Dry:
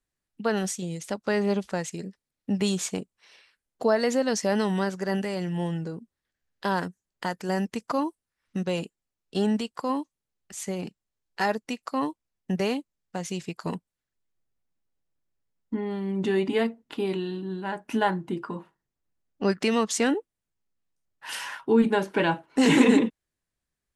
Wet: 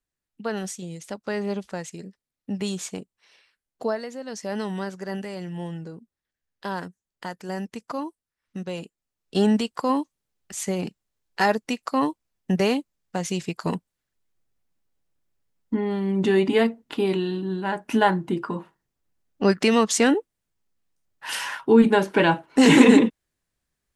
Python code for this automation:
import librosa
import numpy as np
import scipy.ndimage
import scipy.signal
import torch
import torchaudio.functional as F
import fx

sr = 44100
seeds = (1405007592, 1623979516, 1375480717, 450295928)

y = fx.gain(x, sr, db=fx.line((3.89, -3.0), (4.11, -13.0), (4.58, -4.0), (8.81, -4.0), (9.4, 5.0)))